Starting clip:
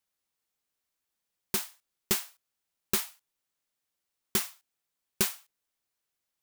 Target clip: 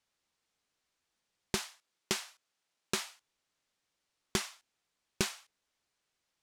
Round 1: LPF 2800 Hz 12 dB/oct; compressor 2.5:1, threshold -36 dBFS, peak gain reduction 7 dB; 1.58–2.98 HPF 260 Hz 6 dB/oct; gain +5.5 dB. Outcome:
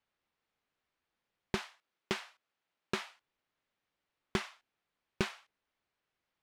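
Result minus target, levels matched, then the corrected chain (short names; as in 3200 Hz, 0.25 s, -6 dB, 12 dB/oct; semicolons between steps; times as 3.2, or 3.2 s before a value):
8000 Hz band -10.5 dB
LPF 6800 Hz 12 dB/oct; compressor 2.5:1, threshold -36 dBFS, peak gain reduction 8 dB; 1.58–2.98 HPF 260 Hz 6 dB/oct; gain +5.5 dB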